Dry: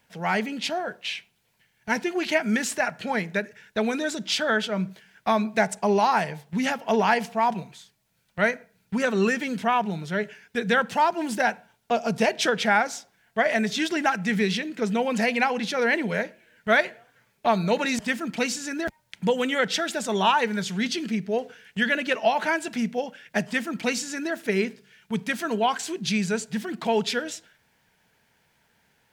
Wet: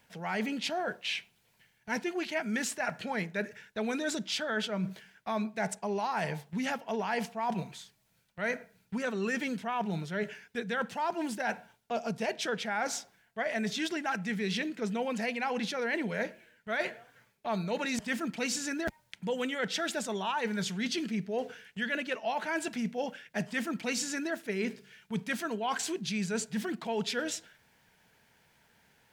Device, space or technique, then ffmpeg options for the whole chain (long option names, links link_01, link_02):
compression on the reversed sound: -af "areverse,acompressor=threshold=-30dB:ratio=6,areverse"